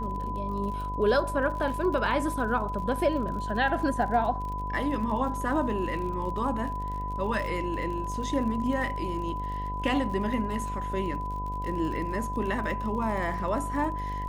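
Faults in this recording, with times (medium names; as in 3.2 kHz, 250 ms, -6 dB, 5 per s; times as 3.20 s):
buzz 50 Hz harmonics 21 -35 dBFS
crackle 47 per s -36 dBFS
whine 1 kHz -33 dBFS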